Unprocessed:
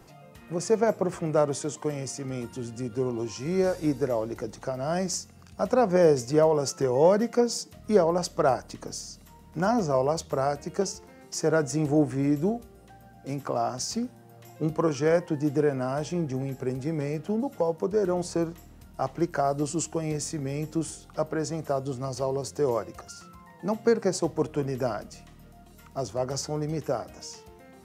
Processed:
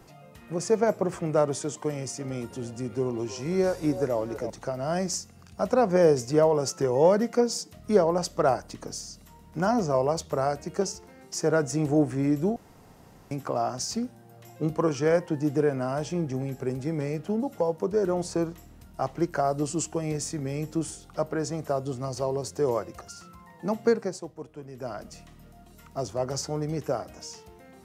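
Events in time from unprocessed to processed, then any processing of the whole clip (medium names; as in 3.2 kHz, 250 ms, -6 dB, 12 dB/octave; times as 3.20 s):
1.89–4.50 s: repeats whose band climbs or falls 318 ms, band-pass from 660 Hz, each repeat 0.7 oct, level -7.5 dB
12.56–13.31 s: room tone
23.90–25.08 s: dip -13.5 dB, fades 0.47 s quadratic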